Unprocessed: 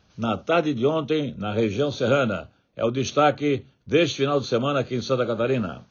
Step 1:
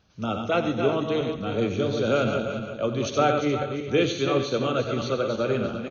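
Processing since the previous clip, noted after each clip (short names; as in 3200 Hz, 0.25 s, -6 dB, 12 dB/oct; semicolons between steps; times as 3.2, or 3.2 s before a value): regenerating reverse delay 0.173 s, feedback 49%, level -6 dB; tapped delay 90/140/355 ms -12/-15/-13.5 dB; gain -3.5 dB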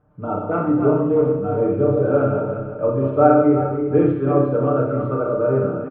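LPF 1300 Hz 24 dB/oct; comb 6.7 ms, depth 75%; on a send at -1 dB: reverb, pre-delay 30 ms; on the sum: gain +1.5 dB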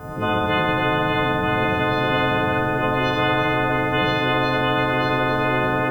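frequency quantiser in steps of 3 st; split-band echo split 500 Hz, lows 0.749 s, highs 83 ms, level -6.5 dB; spectral compressor 10:1; gain -6.5 dB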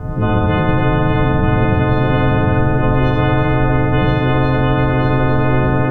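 RIAA curve playback; gain +1 dB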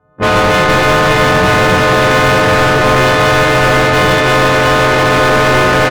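gate -12 dBFS, range -60 dB; overdrive pedal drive 44 dB, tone 3100 Hz, clips at -6 dBFS; doubler 21 ms -9 dB; gain +2 dB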